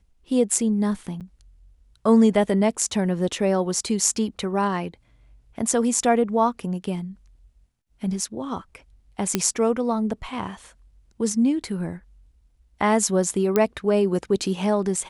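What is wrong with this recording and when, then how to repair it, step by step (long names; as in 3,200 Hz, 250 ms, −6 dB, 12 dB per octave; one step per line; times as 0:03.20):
0:01.20–0:01.21: drop-out 7.8 ms
0:09.35: click −5 dBFS
0:13.56: click −7 dBFS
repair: click removal
repair the gap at 0:01.20, 7.8 ms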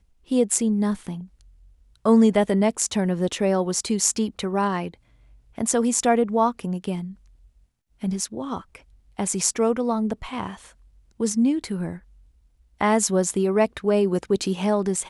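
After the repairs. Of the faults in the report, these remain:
none of them is left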